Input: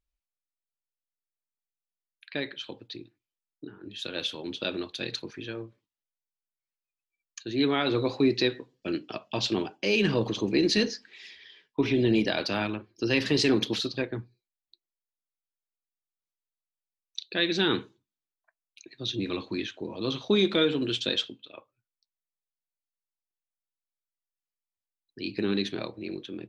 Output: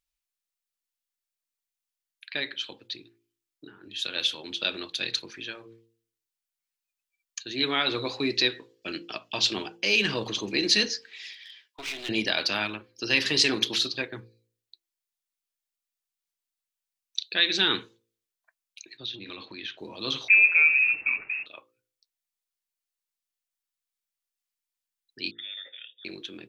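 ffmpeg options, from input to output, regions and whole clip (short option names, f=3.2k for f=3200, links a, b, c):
-filter_complex "[0:a]asettb=1/sr,asplit=3[a][b][c];[a]atrim=end=11.334[d];[b]atrim=start=11.33:end=12.09,asetpts=PTS-STARTPTS,afade=t=in:d=0.004:c=qsin,afade=t=out:st=0.756:d=0.004:c=qsin,highpass=f=1.3k:p=1,aeval=exprs='clip(val(0),-1,0.00562)':c=same[e];[c]atrim=start=12.086[f];[d][e]acrossfade=d=0.004:c1=hsin:c2=qsin[g];[g][f]acrossfade=d=0.004:c1=qsin:c2=hsin,asettb=1/sr,asplit=3[h][i][j];[h]atrim=end=18.974[k];[i]atrim=start=18.97:end=19.78,asetpts=PTS-STARTPTS,afade=t=in:d=0.004:c=qsin,afade=t=out:st=0.806:d=0.004:c=qsin,lowpass=f=4.6k:w=0.5412,lowpass=f=4.6k:w=1.3066,acompressor=threshold=-34dB:ratio=10:attack=3.2:release=140:knee=1:detection=peak[l];[j]atrim=start=19.776[m];[k][l]acrossfade=d=0.004:c1=hsin:c2=qsin[n];[n][m]acrossfade=d=0.004:c1=qsin:c2=hsin,asettb=1/sr,asplit=3[o][p][q];[o]atrim=end=20.284[r];[p]atrim=start=20.28:end=21.46,asetpts=PTS-STARTPTS,afade=t=in:d=0.004:c=qsin,afade=t=out:st=1.176:d=0.004:c=qsin,aeval=exprs='val(0)+0.5*0.0299*sgn(val(0))':c=same,equalizer=f=1.6k:t=o:w=1.6:g=-10.5,lowpass=f=2.4k:t=q:w=0.5098,lowpass=f=2.4k:t=q:w=0.6013,lowpass=f=2.4k:t=q:w=0.9,lowpass=f=2.4k:t=q:w=2.563,afreqshift=-2800[s];[q]atrim=start=21.456[t];[r][s]acrossfade=d=0.004:c1=hsin:c2=qsin[u];[u][t]acrossfade=d=0.004:c1=qsin:c2=hsin,asettb=1/sr,asplit=3[v][w][x];[v]atrim=end=25.314[y];[w]atrim=start=25.31:end=26.05,asetpts=PTS-STARTPTS,afade=t=in:d=0.004:c=qsin,afade=t=out:st=0.736:d=0.004:c=qsin,agate=range=-11dB:threshold=-45dB:ratio=16:release=100:detection=peak,lowpass=f=3.2k:t=q:w=0.5098,lowpass=f=3.2k:t=q:w=0.6013,lowpass=f=3.2k:t=q:w=0.9,lowpass=f=3.2k:t=q:w=2.563,afreqshift=-3800,asplit=3[z][aa][ab];[z]bandpass=f=530:t=q:w=8,volume=0dB[ac];[aa]bandpass=f=1.84k:t=q:w=8,volume=-6dB[ad];[ab]bandpass=f=2.48k:t=q:w=8,volume=-9dB[ae];[ac][ad][ae]amix=inputs=3:normalize=0[af];[x]atrim=start=26.046[ag];[y][af]acrossfade=d=0.004:c1=hsin:c2=qsin[ah];[ah][ag]acrossfade=d=0.004:c1=qsin:c2=hsin,tiltshelf=f=970:g=-7,bandreject=f=56.98:t=h:w=4,bandreject=f=113.96:t=h:w=4,bandreject=f=170.94:t=h:w=4,bandreject=f=227.92:t=h:w=4,bandreject=f=284.9:t=h:w=4,bandreject=f=341.88:t=h:w=4,bandreject=f=398.86:t=h:w=4,bandreject=f=455.84:t=h:w=4,bandreject=f=512.82:t=h:w=4"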